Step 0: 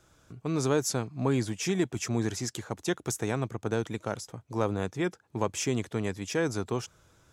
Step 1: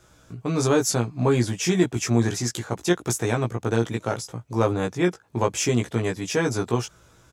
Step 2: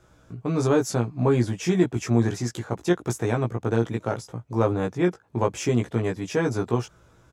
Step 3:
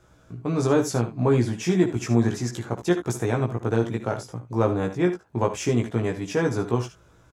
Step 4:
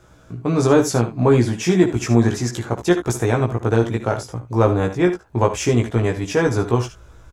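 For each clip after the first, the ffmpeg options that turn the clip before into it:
ffmpeg -i in.wav -filter_complex "[0:a]asplit=2[link_01][link_02];[link_02]adelay=17,volume=-3dB[link_03];[link_01][link_03]amix=inputs=2:normalize=0,volume=5dB" out.wav
ffmpeg -i in.wav -af "highshelf=frequency=2400:gain=-9.5" out.wav
ffmpeg -i in.wav -af "aecho=1:1:59|73:0.158|0.237" out.wav
ffmpeg -i in.wav -af "asubboost=boost=5.5:cutoff=65,volume=6.5dB" out.wav

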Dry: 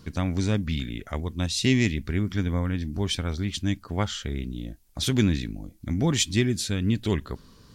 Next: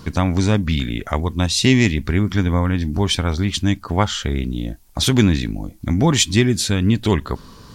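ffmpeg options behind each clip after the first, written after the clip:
ffmpeg -i in.wav -filter_complex "[0:a]equalizer=frequency=930:width_type=o:width=0.95:gain=6,asplit=2[link_01][link_02];[link_02]acompressor=threshold=-29dB:ratio=6,volume=-3dB[link_03];[link_01][link_03]amix=inputs=2:normalize=0,volume=5.5dB" out.wav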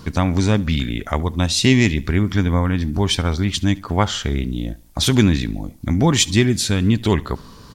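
ffmpeg -i in.wav -af "aecho=1:1:71|142|213:0.075|0.0352|0.0166" out.wav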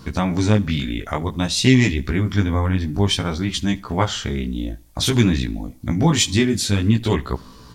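ffmpeg -i in.wav -af "flanger=delay=15.5:depth=5.3:speed=0.54,volume=1.5dB" out.wav

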